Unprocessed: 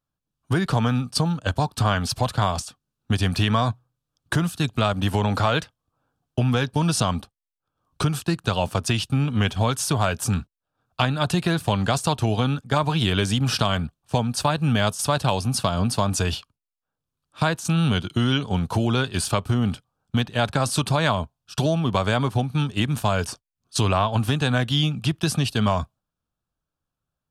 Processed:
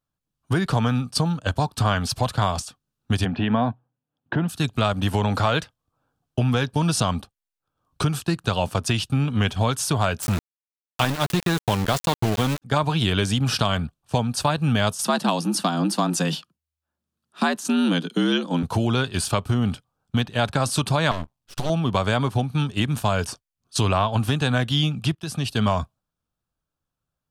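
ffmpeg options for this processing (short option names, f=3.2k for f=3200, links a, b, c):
-filter_complex "[0:a]asplit=3[a][b][c];[a]afade=t=out:st=3.24:d=0.02[d];[b]highpass=140,equalizer=f=240:t=q:w=4:g=7,equalizer=f=790:t=q:w=4:g=4,equalizer=f=1.2k:t=q:w=4:g=-8,equalizer=f=2.2k:t=q:w=4:g=-5,lowpass=f=2.7k:w=0.5412,lowpass=f=2.7k:w=1.3066,afade=t=in:st=3.24:d=0.02,afade=t=out:st=4.48:d=0.02[e];[c]afade=t=in:st=4.48:d=0.02[f];[d][e][f]amix=inputs=3:normalize=0,asettb=1/sr,asplit=3[g][h][i];[g]atrim=end=10.224[j];[h]atrim=start=10.22:end=12.62,asetpts=PTS-STARTPTS,afade=t=in:d=0.004:c=qsin,afade=t=out:st=2.396:d=0.004:c=qsin,aeval=exprs='val(0)*gte(abs(val(0)),0.0668)':c=same[k];[i]atrim=start=12.616[l];[j][k]acrossfade=d=0.004:c1=hsin:c2=qsin[m];[m][l]acrossfade=d=0.004:c1=qsin:c2=hsin,asettb=1/sr,asplit=3[n][o][p];[n]atrim=end=15.034[q];[o]atrim=start=15.03:end=18.63,asetpts=PTS-STARTPTS,afade=t=in:d=0.004:c=qsin,afade=t=out:st=3.596:d=0.004:c=qsin,afreqshift=77[r];[p]atrim=start=18.626[s];[q][r]acrossfade=d=0.004:c1=hsin:c2=qsin[t];[t][s]acrossfade=d=0.004:c1=qsin:c2=hsin,asettb=1/sr,asplit=3[u][v][w];[u]atrim=end=21.114[x];[v]atrim=start=21.11:end=21.7,asetpts=PTS-STARTPTS,afade=t=in:d=0.004:c=qsin,afade=t=out:st=0.586:d=0.004:c=qsin,aeval=exprs='max(val(0),0)':c=same[y];[w]atrim=start=21.696[z];[x][y]acrossfade=d=0.004:c1=hsin:c2=qsin[aa];[aa][z]acrossfade=d=0.004:c1=qsin:c2=hsin,asplit=2[ab][ac];[ab]atrim=end=25.15,asetpts=PTS-STARTPTS,afade=t=out:st=25.146:d=0.004:c=hsin:silence=0.158489[ad];[ac]atrim=start=25.15,asetpts=PTS-STARTPTS,afade=t=in:d=0.43:silence=0.158489[ae];[ad][ae]concat=n=2:v=0:a=1"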